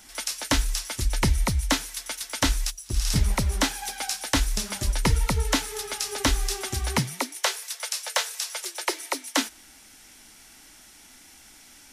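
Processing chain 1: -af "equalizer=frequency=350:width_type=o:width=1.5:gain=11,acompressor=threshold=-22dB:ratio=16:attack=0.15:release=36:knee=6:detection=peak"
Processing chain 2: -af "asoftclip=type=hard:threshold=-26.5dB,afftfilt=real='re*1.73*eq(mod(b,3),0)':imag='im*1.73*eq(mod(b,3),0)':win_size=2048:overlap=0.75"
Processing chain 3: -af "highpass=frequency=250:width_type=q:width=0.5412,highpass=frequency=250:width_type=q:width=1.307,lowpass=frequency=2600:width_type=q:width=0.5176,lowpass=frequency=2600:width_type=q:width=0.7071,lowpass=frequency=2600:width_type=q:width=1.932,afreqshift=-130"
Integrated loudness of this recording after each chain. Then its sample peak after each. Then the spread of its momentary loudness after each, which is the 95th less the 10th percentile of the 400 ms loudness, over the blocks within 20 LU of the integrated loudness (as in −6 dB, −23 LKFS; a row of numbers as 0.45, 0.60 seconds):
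−31.0, −33.5, −33.0 LKFS; −19.0, −23.0, −10.5 dBFS; 18, 19, 10 LU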